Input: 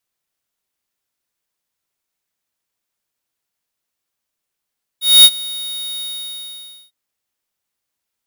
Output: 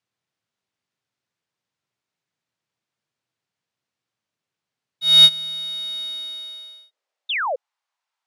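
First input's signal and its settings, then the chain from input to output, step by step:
ADSR square 3740 Hz, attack 0.235 s, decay 51 ms, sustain -21.5 dB, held 1.00 s, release 0.9 s -4 dBFS
high-pass sweep 120 Hz -> 900 Hz, 5.05–7.74; air absorption 93 m; painted sound fall, 7.29–7.56, 470–3800 Hz -23 dBFS

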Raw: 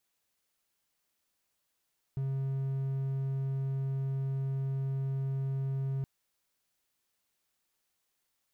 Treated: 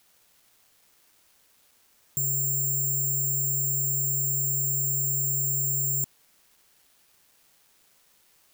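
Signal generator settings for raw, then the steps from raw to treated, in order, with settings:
tone triangle 135 Hz -28 dBFS 3.87 s
low shelf 81 Hz -11.5 dB; in parallel at -3 dB: negative-ratio compressor -42 dBFS, ratio -0.5; on the sum: careless resampling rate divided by 6×, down none, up zero stuff

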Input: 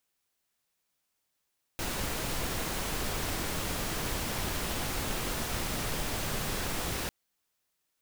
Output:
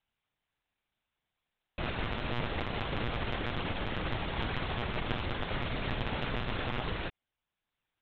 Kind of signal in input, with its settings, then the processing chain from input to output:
noise pink, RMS -33 dBFS 5.30 s
monotone LPC vocoder at 8 kHz 120 Hz; transient shaper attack +2 dB, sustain -3 dB

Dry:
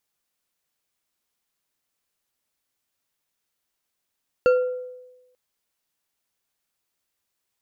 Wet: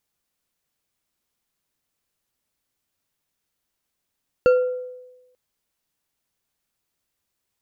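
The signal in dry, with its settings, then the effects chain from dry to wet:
glass hit bar, lowest mode 502 Hz, decay 1.08 s, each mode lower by 9.5 dB, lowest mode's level -12 dB
low shelf 310 Hz +7 dB

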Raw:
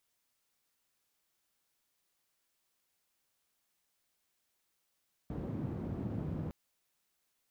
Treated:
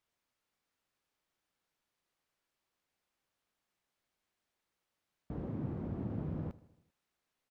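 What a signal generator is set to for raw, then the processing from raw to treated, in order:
noise band 95–190 Hz, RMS -38.5 dBFS 1.21 s
LPF 2400 Hz 6 dB/oct; feedback echo 79 ms, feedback 60%, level -20 dB

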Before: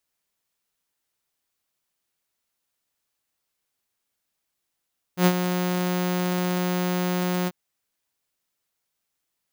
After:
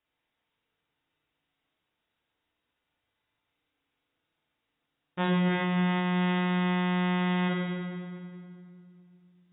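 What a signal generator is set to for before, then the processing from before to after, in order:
ADSR saw 180 Hz, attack 91 ms, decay 58 ms, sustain -9 dB, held 2.30 s, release 41 ms -11 dBFS
FDN reverb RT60 2.2 s, low-frequency decay 1.6×, high-frequency decay 0.8×, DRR -2.5 dB; limiter -18 dBFS; AAC 16 kbps 16000 Hz

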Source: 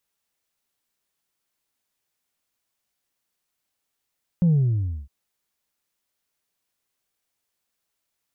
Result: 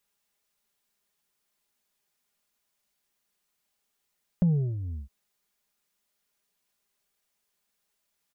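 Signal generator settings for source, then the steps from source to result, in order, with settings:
sub drop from 180 Hz, over 0.66 s, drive 1 dB, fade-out 0.59 s, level -15 dB
compressor 3:1, threshold -26 dBFS; comb 4.9 ms, depth 51%; dynamic EQ 680 Hz, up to +7 dB, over -49 dBFS, Q 1.2

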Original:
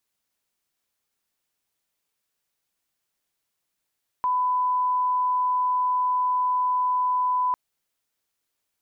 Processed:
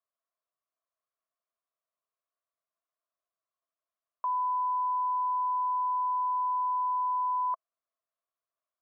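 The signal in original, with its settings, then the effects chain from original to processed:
line-up tone -20 dBFS 3.30 s
double band-pass 850 Hz, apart 0.71 oct

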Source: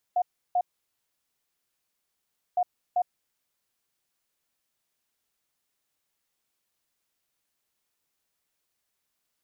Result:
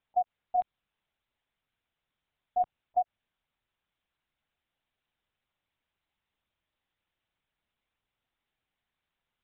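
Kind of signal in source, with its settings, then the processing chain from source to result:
beep pattern sine 719 Hz, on 0.06 s, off 0.33 s, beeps 2, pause 1.96 s, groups 2, -20.5 dBFS
LPC vocoder at 8 kHz pitch kept

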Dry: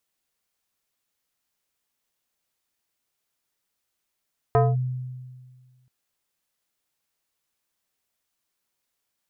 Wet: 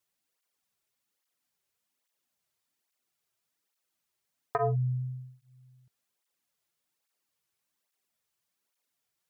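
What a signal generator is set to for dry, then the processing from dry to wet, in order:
FM tone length 1.33 s, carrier 127 Hz, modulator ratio 4.48, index 1.5, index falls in 0.21 s linear, decay 1.71 s, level -13.5 dB
tape flanging out of phase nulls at 1.2 Hz, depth 4.3 ms

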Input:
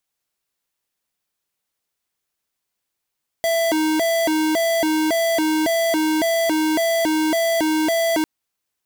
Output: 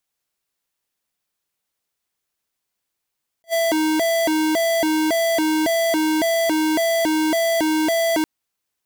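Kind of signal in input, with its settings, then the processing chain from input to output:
siren hi-lo 312–665 Hz 1.8/s square -19 dBFS 4.80 s
attack slew limiter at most 580 dB/s

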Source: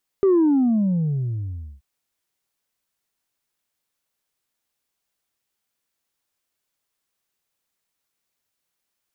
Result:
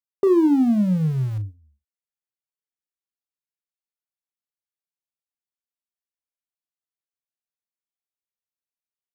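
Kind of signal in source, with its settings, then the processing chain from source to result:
sub drop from 400 Hz, over 1.58 s, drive 1 dB, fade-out 1.51 s, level -13.5 dB
gate -29 dBFS, range -22 dB; in parallel at -12 dB: Schmitt trigger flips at -24.5 dBFS; on the sum: doubler 38 ms -11.5 dB

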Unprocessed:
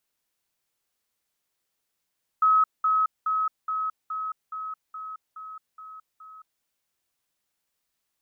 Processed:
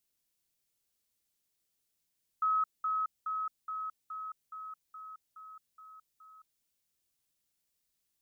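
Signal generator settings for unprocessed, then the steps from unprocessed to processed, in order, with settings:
level ladder 1280 Hz -16 dBFS, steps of -3 dB, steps 10, 0.22 s 0.20 s
bell 1100 Hz -10 dB 2.7 oct

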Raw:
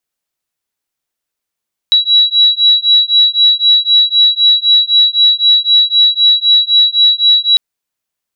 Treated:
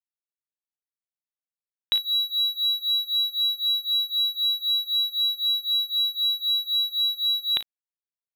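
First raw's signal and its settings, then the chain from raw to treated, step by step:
beating tones 3900 Hz, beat 3.9 Hz, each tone -9.5 dBFS 5.65 s
Chebyshev low-pass 3700 Hz, order 8; early reflections 37 ms -13.5 dB, 56 ms -13.5 dB; crossover distortion -35 dBFS

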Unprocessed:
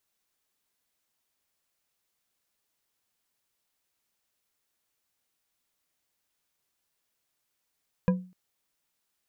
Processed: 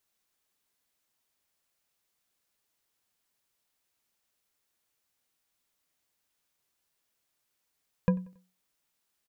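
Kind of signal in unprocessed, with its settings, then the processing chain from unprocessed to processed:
glass hit bar, length 0.25 s, lowest mode 183 Hz, decay 0.37 s, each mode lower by 6 dB, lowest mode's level -17 dB
feedback echo 92 ms, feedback 42%, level -23.5 dB

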